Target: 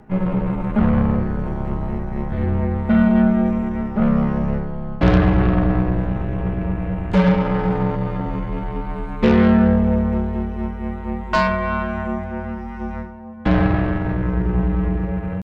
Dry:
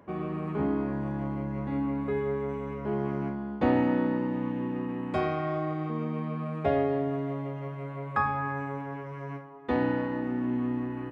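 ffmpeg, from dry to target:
-af "equalizer=f=390:t=o:w=0.2:g=14,atempo=0.72,aeval=exprs='0.282*(cos(1*acos(clip(val(0)/0.282,-1,1)))-cos(1*PI/2))+0.0355*(cos(8*acos(clip(val(0)/0.282,-1,1)))-cos(8*PI/2))':c=same,afreqshift=-190,volume=2.37"

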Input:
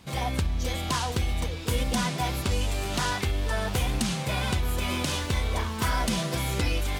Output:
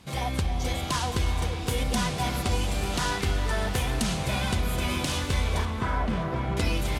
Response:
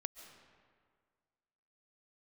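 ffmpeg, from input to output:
-filter_complex "[0:a]asettb=1/sr,asplit=3[s0][s1][s2];[s0]atrim=end=5.654[s3];[s1]atrim=start=5.65:end=6.57,asetpts=PTS-STARTPTS,afade=t=in:d=0.004:c=qsin,afade=t=out:st=0.916:d=0.004:c=qsin,lowpass=1700[s4];[s2]atrim=start=6.566[s5];[s3][s4]acrossfade=d=0.004:c1=hsin:c2=qsin[s6];[s6][s5]acrossfade=d=0.004:c1=qsin:c2=hsin,aecho=1:1:530|1060|1590|2120:0.1|0.055|0.0303|0.0166[s7];[1:a]atrim=start_sample=2205,asetrate=24696,aresample=44100[s8];[s7][s8]afir=irnorm=-1:irlink=0"

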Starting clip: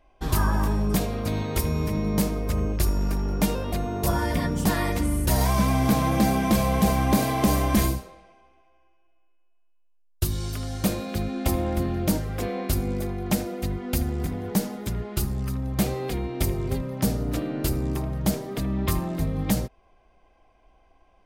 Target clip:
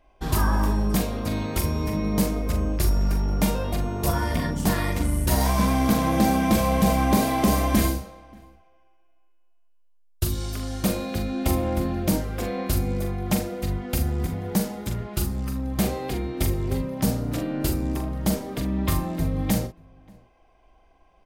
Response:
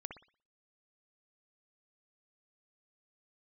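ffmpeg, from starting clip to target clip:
-filter_complex "[0:a]asettb=1/sr,asplit=3[s0][s1][s2];[s0]atrim=end=4.094[s3];[s1]atrim=start=4.09:end=6.13,asetpts=PTS-STARTPTS,afade=t=in:d=0.004:c=qsin,afade=t=out:st=2.036:d=0.004:c=qsin,aeval=exprs='0.355*(cos(1*acos(clip(val(0)/0.355,-1,1)))-cos(1*PI/2))+0.0141*(cos(7*acos(clip(val(0)/0.355,-1,1)))-cos(7*PI/2))':c=same[s4];[s2]atrim=start=6.126[s5];[s3][s4]acrossfade=d=0.004:c1=hsin:c2=qsin[s6];[s6][s5]acrossfade=d=0.004:c1=qsin:c2=hsin,asplit=2[s7][s8];[s8]adelay=42,volume=0.473[s9];[s7][s9]amix=inputs=2:normalize=0,asplit=2[s10][s11];[s11]adelay=583.1,volume=0.0447,highshelf=f=4000:g=-13.1[s12];[s10][s12]amix=inputs=2:normalize=0"

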